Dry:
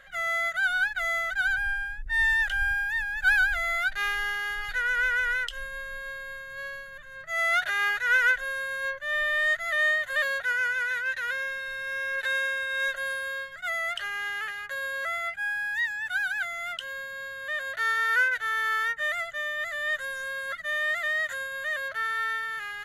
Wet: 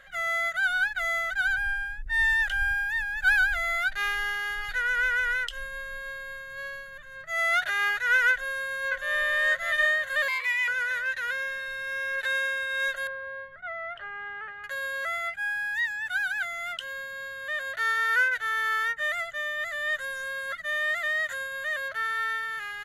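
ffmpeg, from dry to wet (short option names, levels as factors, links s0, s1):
-filter_complex "[0:a]asplit=2[s0][s1];[s1]afade=t=in:st=8.31:d=0.01,afade=t=out:st=9.26:d=0.01,aecho=0:1:600|1200|1800|2400|3000:0.668344|0.267338|0.106935|0.042774|0.0171096[s2];[s0][s2]amix=inputs=2:normalize=0,asettb=1/sr,asplit=3[s3][s4][s5];[s3]atrim=end=10.284[s6];[s4]atrim=start=10.28:end=10.68,asetpts=PTS-STARTPTS,afade=t=in:d=0.004:c=qsin,afade=t=out:st=0.396:d=0.004:c=qsin,afreqshift=480[s7];[s5]atrim=start=10.676[s8];[s6][s7]acrossfade=d=0.004:c1=hsin:c2=qsin[s9];[s9][s8]acrossfade=d=0.004:c1=qsin:c2=hsin,asettb=1/sr,asplit=3[s10][s11][s12];[s10]atrim=end=13.074[s13];[s11]atrim=start=13.07:end=14.64,asetpts=PTS-STARTPTS,afade=t=in:d=0.004:c=qsin,afade=t=out:st=1.566:d=0.004:c=qsin,lowpass=1300[s14];[s12]atrim=start=14.636[s15];[s13][s14]acrossfade=d=0.004:c1=hsin:c2=qsin[s16];[s16][s15]acrossfade=d=0.004:c1=qsin:c2=hsin"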